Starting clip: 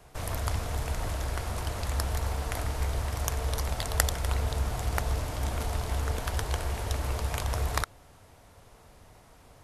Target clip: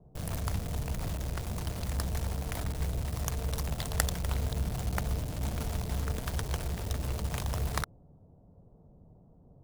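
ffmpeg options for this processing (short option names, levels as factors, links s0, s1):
-filter_complex "[0:a]equalizer=f=170:w=1.6:g=11,acrossover=split=710[s0][s1];[s1]acrusher=bits=5:mix=0:aa=0.000001[s2];[s0][s2]amix=inputs=2:normalize=0,volume=0.631"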